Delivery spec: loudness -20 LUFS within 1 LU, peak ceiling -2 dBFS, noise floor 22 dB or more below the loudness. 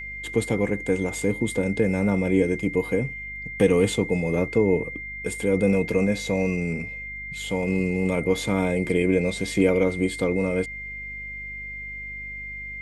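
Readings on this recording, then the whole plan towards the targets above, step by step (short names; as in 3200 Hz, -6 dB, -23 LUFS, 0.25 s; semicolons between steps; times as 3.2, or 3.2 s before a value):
hum 50 Hz; harmonics up to 250 Hz; hum level -42 dBFS; steady tone 2100 Hz; tone level -33 dBFS; loudness -24.5 LUFS; peak -7.0 dBFS; loudness target -20.0 LUFS
-> de-hum 50 Hz, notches 5; notch 2100 Hz, Q 30; gain +4.5 dB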